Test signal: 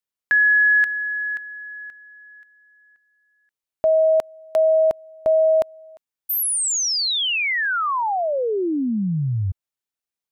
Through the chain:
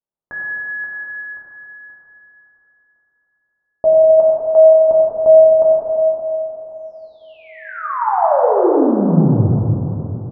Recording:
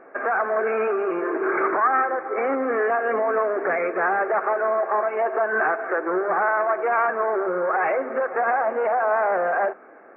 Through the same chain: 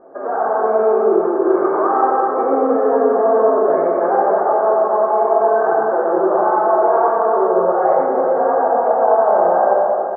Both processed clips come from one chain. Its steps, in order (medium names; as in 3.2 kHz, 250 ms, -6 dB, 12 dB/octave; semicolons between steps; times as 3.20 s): low-pass 1 kHz 24 dB/octave; delay 91 ms -9.5 dB; plate-style reverb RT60 3.5 s, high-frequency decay 0.5×, DRR -6 dB; trim +1.5 dB